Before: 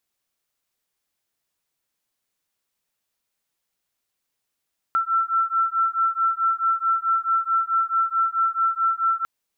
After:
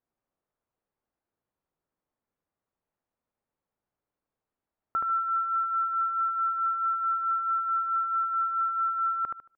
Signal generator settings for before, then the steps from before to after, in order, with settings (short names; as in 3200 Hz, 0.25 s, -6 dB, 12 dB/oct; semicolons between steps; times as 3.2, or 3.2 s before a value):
beating tones 1340 Hz, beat 4.6 Hz, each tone -22 dBFS 4.30 s
LPF 1000 Hz 12 dB/oct; on a send: feedback echo 75 ms, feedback 26%, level -3 dB